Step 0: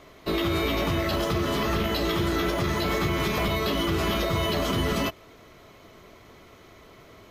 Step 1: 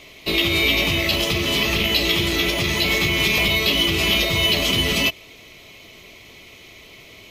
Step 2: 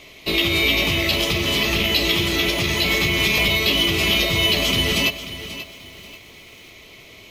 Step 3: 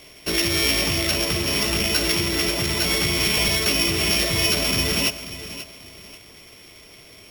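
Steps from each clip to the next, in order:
resonant high shelf 1900 Hz +8 dB, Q 3; gain +2 dB
lo-fi delay 0.536 s, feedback 35%, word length 7-bit, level -13 dB
sample sorter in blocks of 8 samples; gain -2 dB

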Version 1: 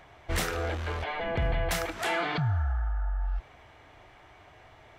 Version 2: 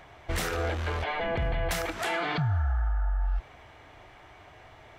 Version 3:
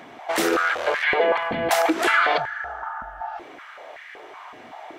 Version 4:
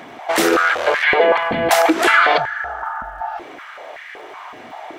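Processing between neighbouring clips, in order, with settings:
limiter -23.5 dBFS, peak gain reduction 5 dB; gain +2.5 dB
stepped high-pass 5.3 Hz 240–1800 Hz; gain +7 dB
crackle 110/s -52 dBFS; gain +6 dB

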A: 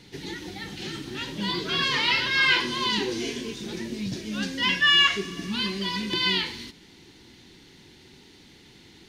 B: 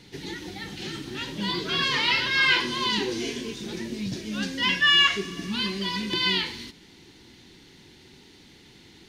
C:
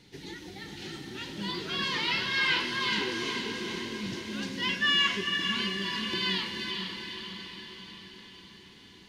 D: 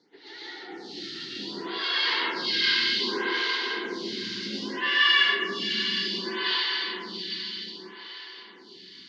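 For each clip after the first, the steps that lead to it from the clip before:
nothing audible
diffused feedback echo 0.456 s, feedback 59%, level -5 dB; gain -6.5 dB
speaker cabinet 350–5200 Hz, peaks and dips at 570 Hz -7 dB, 980 Hz -4 dB, 2500 Hz -7 dB, 4600 Hz +7 dB; plate-style reverb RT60 2 s, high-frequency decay 0.9×, pre-delay 0.105 s, DRR -8.5 dB; photocell phaser 0.64 Hz

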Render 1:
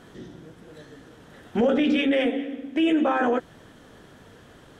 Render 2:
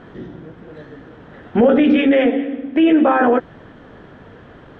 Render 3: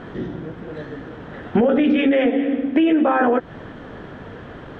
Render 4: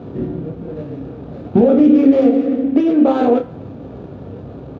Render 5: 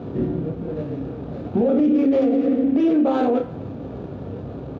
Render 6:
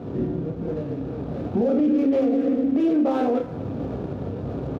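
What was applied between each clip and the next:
LPF 2200 Hz 12 dB/oct; gain +8.5 dB
compressor 6:1, threshold -19 dBFS, peak gain reduction 10 dB; gain +5 dB
median filter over 25 samples; doubler 30 ms -8 dB; reverb RT60 0.60 s, pre-delay 3 ms, DRR 10 dB; gain -10.5 dB
limiter -11.5 dBFS, peak gain reduction 10 dB
median filter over 15 samples; recorder AGC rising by 21 dB/s; speakerphone echo 0.23 s, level -18 dB; gain -2.5 dB

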